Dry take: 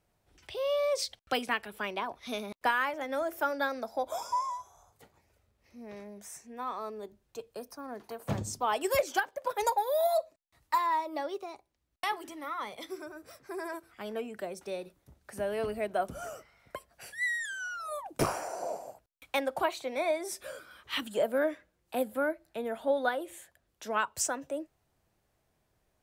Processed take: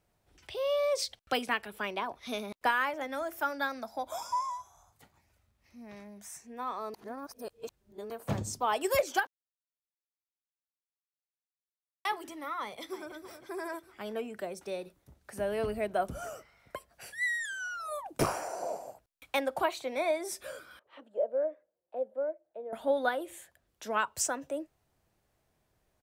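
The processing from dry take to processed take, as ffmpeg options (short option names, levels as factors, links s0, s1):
-filter_complex "[0:a]asettb=1/sr,asplit=3[s0][s1][s2];[s0]atrim=end=3.074[s3];[s1]atrim=start=3.07:end=6.42,asetpts=PTS-STARTPTS,afade=t=in:d=0.004:c=qsin,afade=t=out:st=3.346:d=0.004:c=qsin,equalizer=f=460:t=o:w=0.77:g=-9[s4];[s2]atrim=start=6.416[s5];[s3][s4]acrossfade=d=0.004:c1=hsin:c2=qsin[s6];[s6][s5]acrossfade=d=0.004:c1=qsin:c2=hsin,asplit=2[s7][s8];[s8]afade=t=in:st=12.6:d=0.01,afade=t=out:st=13.13:d=0.01,aecho=0:1:320|640|960|1280|1600:0.281838|0.140919|0.0704596|0.0352298|0.0176149[s9];[s7][s9]amix=inputs=2:normalize=0,asettb=1/sr,asplit=3[s10][s11][s12];[s10]atrim=end=15.414[s13];[s11]atrim=start=15.41:end=16.18,asetpts=PTS-STARTPTS,afade=t=in:d=0.004:c=qsin,afade=t=out:st=0.766:d=0.004:c=qsin,lowshelf=f=120:g=7.5[s14];[s12]atrim=start=16.176[s15];[s13][s14]acrossfade=d=0.004:c1=hsin:c2=qsin[s16];[s16][s15]acrossfade=d=0.004:c1=qsin:c2=hsin,asettb=1/sr,asplit=3[s17][s18][s19];[s17]atrim=end=20.794[s20];[s18]atrim=start=20.79:end=22.73,asetpts=PTS-STARTPTS,afade=t=in:d=0.004:c=qsin,afade=t=out:st=1.936:d=0.004:c=qsin,bandpass=f=560:t=q:w=4[s21];[s19]atrim=start=22.726[s22];[s20][s21]acrossfade=d=0.004:c1=hsin:c2=qsin[s23];[s23][s22]acrossfade=d=0.004:c1=qsin:c2=hsin,asplit=5[s24][s25][s26][s27][s28];[s24]atrim=end=6.942[s29];[s25]atrim=start=6.938:end=8.102,asetpts=PTS-STARTPTS,areverse[s30];[s26]atrim=start=8.098:end=9.27,asetpts=PTS-STARTPTS,afade=t=out:st=1.168:d=0.004:c=hsin[s31];[s27]atrim=start=9.27:end=12.05,asetpts=PTS-STARTPTS,volume=0[s32];[s28]atrim=start=12.05,asetpts=PTS-STARTPTS,afade=t=in:d=0.004:c=hsin[s33];[s29][s30]acrossfade=d=0.004:c1=hsin:c2=hsin[s34];[s31][s32][s33]concat=n=3:v=0:a=1[s35];[s34][s35]acrossfade=d=0.004:c1=hsin:c2=hsin"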